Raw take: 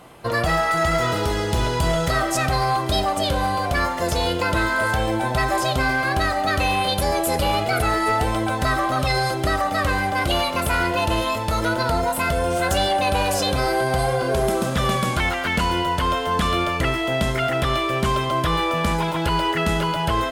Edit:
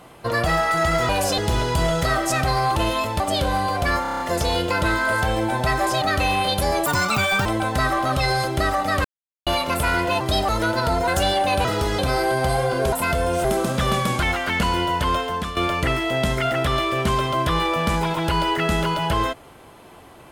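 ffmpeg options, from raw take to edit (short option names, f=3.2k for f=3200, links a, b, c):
-filter_complex "[0:a]asplit=24[a][b][c][d][e][f][g][h][i][j][k][l][m][n][o][p][q][r][s][t][u][v][w][x];[a]atrim=end=1.092[y];[b]atrim=start=13.188:end=13.482[z];[c]atrim=start=1.428:end=2.812[aa];[d]atrim=start=11.068:end=11.512[ab];[e]atrim=start=3.088:end=3.942[ac];[f]atrim=start=3.908:end=3.942[ad];[g]atrim=start=3.908:end=3.942[ae];[h]atrim=start=3.908:end=3.942[af];[i]atrim=start=3.908:end=3.942[ag];[j]atrim=start=3.908:end=3.942[ah];[k]atrim=start=3.908:end=5.732[ai];[l]atrim=start=6.418:end=7.264[aj];[m]atrim=start=7.26:end=8.32,asetpts=PTS-STARTPTS,asetrate=78498,aresample=44100[ak];[n]atrim=start=8.316:end=9.91,asetpts=PTS-STARTPTS,afade=t=out:st=1.59:d=0.004:c=hsin[al];[o]atrim=start=9.91:end=10.33,asetpts=PTS-STARTPTS,volume=0[am];[p]atrim=start=10.33:end=11.072,asetpts=PTS-STARTPTS,afade=t=in:d=0.004:c=hsin[an];[q]atrim=start=2.808:end=3.092[ao];[r]atrim=start=11.508:end=12.102[ap];[s]atrim=start=12.618:end=13.192[aq];[t]atrim=start=1.088:end=1.432[ar];[u]atrim=start=13.478:end=14.422[as];[v]atrim=start=12.098:end=12.622[at];[w]atrim=start=14.418:end=16.54,asetpts=PTS-STARTPTS,afade=t=out:st=1.712:d=0.41:silence=0.237137[au];[x]atrim=start=16.54,asetpts=PTS-STARTPTS,afade=t=in:d=0.004:c=hsin:silence=0.237137[av];[y][z]acrossfade=d=0.004:c1=hsin:c2=hsin[aw];[aw][aa]acrossfade=d=0.004:c1=hsin:c2=hsin[ax];[ax][ab]acrossfade=d=0.004:c1=hsin:c2=hsin[ay];[ay][ac]acrossfade=d=0.004:c1=hsin:c2=hsin[az];[az][ad]acrossfade=d=0.004:c1=hsin:c2=hsin[ba];[ba][ae]acrossfade=d=0.004:c1=hsin:c2=hsin[bb];[bb][af]acrossfade=d=0.004:c1=hsin:c2=hsin[bc];[bc][ag]acrossfade=d=0.004:c1=hsin:c2=hsin[bd];[bd][ah]acrossfade=d=0.004:c1=hsin:c2=hsin[be];[be][ai]acrossfade=d=0.004:c1=hsin:c2=hsin[bf];[bf][aj]acrossfade=d=0.004:c1=hsin:c2=hsin[bg];[bg][ak]acrossfade=d=0.004:c1=hsin:c2=hsin[bh];[al][am][an]concat=n=3:v=0:a=1[bi];[bh][bi]acrossfade=d=0.004:c1=hsin:c2=hsin[bj];[bj][ao]acrossfade=d=0.004:c1=hsin:c2=hsin[bk];[bk][ap]acrossfade=d=0.004:c1=hsin:c2=hsin[bl];[bl][aq]acrossfade=d=0.004:c1=hsin:c2=hsin[bm];[bm][ar]acrossfade=d=0.004:c1=hsin:c2=hsin[bn];[bn][as]acrossfade=d=0.004:c1=hsin:c2=hsin[bo];[bo][at]acrossfade=d=0.004:c1=hsin:c2=hsin[bp];[au][av]concat=n=2:v=0:a=1[bq];[bp][bq]acrossfade=d=0.004:c1=hsin:c2=hsin"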